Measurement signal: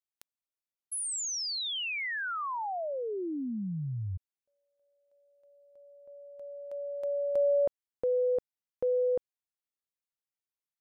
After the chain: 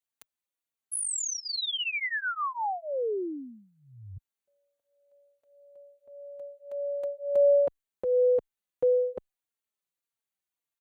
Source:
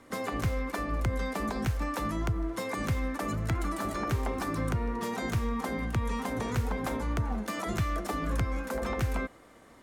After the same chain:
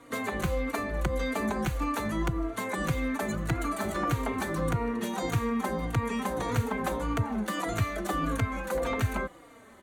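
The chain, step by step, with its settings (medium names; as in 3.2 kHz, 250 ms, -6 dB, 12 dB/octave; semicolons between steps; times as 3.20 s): bass shelf 89 Hz -6.5 dB; band-stop 5.2 kHz, Q 5; endless flanger 3.7 ms -1.7 Hz; trim +6 dB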